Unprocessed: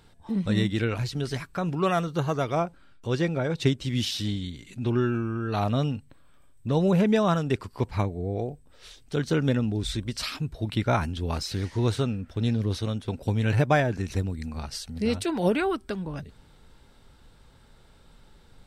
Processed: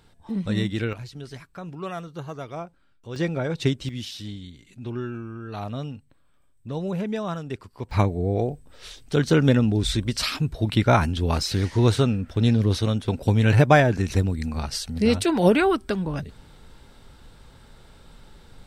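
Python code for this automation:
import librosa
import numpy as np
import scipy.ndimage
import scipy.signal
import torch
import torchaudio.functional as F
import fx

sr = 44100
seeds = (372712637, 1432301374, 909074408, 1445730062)

y = fx.gain(x, sr, db=fx.steps((0.0, -0.5), (0.93, -8.5), (3.16, 0.5), (3.89, -6.5), (7.91, 6.0)))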